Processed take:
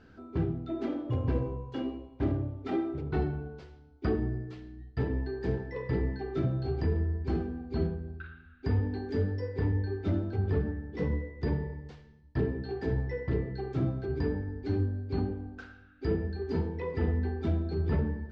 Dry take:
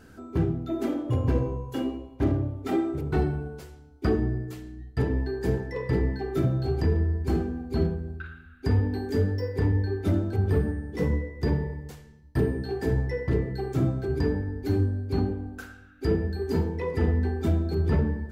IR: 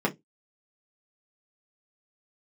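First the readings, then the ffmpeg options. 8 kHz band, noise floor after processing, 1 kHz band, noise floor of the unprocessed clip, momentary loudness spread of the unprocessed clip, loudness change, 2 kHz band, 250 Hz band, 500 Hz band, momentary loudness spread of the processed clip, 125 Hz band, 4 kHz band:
n/a, -55 dBFS, -5.0 dB, -50 dBFS, 8 LU, -5.0 dB, -5.0 dB, -5.0 dB, -5.0 dB, 8 LU, -5.0 dB, -6.5 dB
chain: -af "lowpass=f=4.8k:w=0.5412,lowpass=f=4.8k:w=1.3066,volume=-5dB"

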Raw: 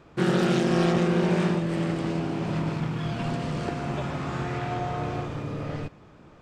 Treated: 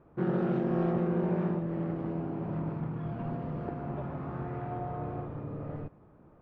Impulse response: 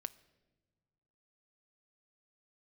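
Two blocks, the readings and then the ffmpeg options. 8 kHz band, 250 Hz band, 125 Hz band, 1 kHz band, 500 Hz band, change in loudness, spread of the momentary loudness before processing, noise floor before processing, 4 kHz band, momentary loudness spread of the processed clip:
under -35 dB, -6.0 dB, -6.0 dB, -7.5 dB, -6.0 dB, -6.5 dB, 10 LU, -51 dBFS, under -25 dB, 10 LU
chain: -af "lowpass=1.1k,volume=-6dB"

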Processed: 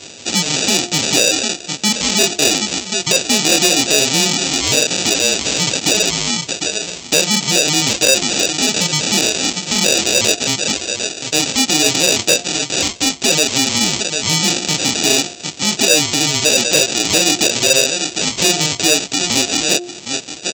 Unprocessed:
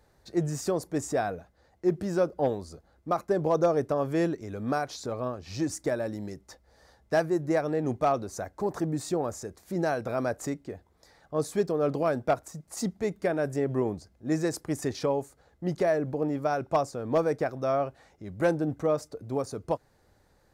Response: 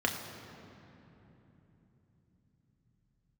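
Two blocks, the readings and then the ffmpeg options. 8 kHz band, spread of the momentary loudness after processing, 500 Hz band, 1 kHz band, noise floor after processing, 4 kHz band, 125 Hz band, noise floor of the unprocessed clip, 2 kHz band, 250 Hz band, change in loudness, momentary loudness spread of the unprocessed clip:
+31.0 dB, 6 LU, +6.0 dB, +7.0 dB, -33 dBFS, +35.0 dB, +7.5 dB, -65 dBFS, +20.5 dB, +9.5 dB, +15.5 dB, 9 LU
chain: -filter_complex "[0:a]afftfilt=real='real(if(lt(b,920),b+92*(1-2*mod(floor(b/92),2)),b),0)':imag='imag(if(lt(b,920),b+92*(1-2*mod(floor(b/92),2)),b),0)':win_size=2048:overlap=0.75,asplit=2[a][b];[b]adelay=749,lowpass=f=900:p=1,volume=-12.5dB,asplit=2[c][d];[d]adelay=749,lowpass=f=900:p=1,volume=0.18[e];[a][c][e]amix=inputs=3:normalize=0,flanger=delay=20:depth=6.6:speed=0.38,aresample=16000,acrusher=samples=15:mix=1:aa=0.000001,aresample=44100,acompressor=threshold=-37dB:ratio=2,bandreject=f=353.1:t=h:w=4,bandreject=f=706.2:t=h:w=4,bandreject=f=1.0593k:t=h:w=4,aexciter=amount=6.9:drive=3.7:freq=2.3k,volume=23.5dB,asoftclip=hard,volume=-23.5dB,highpass=210,alimiter=level_in=29.5dB:limit=-1dB:release=50:level=0:latency=1,volume=-1dB"

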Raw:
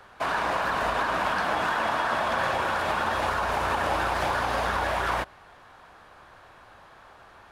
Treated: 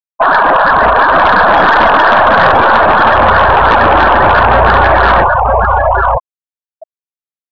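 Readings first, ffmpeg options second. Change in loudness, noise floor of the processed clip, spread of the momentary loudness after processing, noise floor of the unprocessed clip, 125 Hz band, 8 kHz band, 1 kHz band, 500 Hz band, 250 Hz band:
+19.0 dB, under -85 dBFS, 3 LU, -52 dBFS, +20.5 dB, n/a, +20.0 dB, +20.0 dB, +18.0 dB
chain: -filter_complex "[0:a]aeval=exprs='0.251*(cos(1*acos(clip(val(0)/0.251,-1,1)))-cos(1*PI/2))+0.0112*(cos(5*acos(clip(val(0)/0.251,-1,1)))-cos(5*PI/2))+0.00891*(cos(6*acos(clip(val(0)/0.251,-1,1)))-cos(6*PI/2))+0.00447*(cos(7*acos(clip(val(0)/0.251,-1,1)))-cos(7*PI/2))':c=same,asplit=2[a][b];[b]adelay=947,lowpass=f=1.8k:p=1,volume=-3.5dB,asplit=2[c][d];[d]adelay=947,lowpass=f=1.8k:p=1,volume=0.24,asplit=2[e][f];[f]adelay=947,lowpass=f=1.8k:p=1,volume=0.24[g];[c][e][g]amix=inputs=3:normalize=0[h];[a][h]amix=inputs=2:normalize=0,afftfilt=real='re*gte(hypot(re,im),0.0794)':imag='im*gte(hypot(re,im),0.0794)':win_size=1024:overlap=0.75,aeval=exprs='0.224*sin(PI/2*1.78*val(0)/0.224)':c=same,alimiter=level_in=21dB:limit=-1dB:release=50:level=0:latency=1,volume=-1dB"

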